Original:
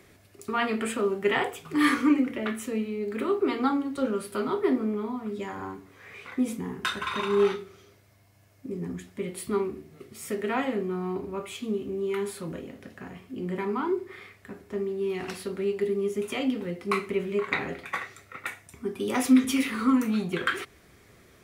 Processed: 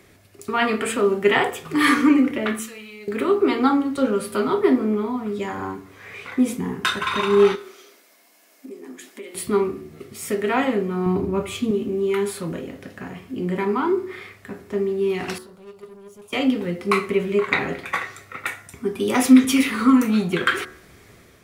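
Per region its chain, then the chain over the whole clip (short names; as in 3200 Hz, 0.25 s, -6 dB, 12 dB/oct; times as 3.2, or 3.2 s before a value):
2.59–3.08 passive tone stack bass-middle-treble 10-0-10 + comb 4.7 ms, depth 47%
7.55–9.35 tilt +1.5 dB/oct + compressor 3:1, threshold -41 dBFS + brick-wall FIR high-pass 210 Hz
11.06–11.71 low shelf 220 Hz +11.5 dB + mismatched tape noise reduction decoder only
15.38–16.33 fixed phaser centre 760 Hz, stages 4 + sample leveller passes 3 + gate -27 dBFS, range -22 dB
whole clip: de-hum 74.08 Hz, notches 27; AGC gain up to 4 dB; gain +3.5 dB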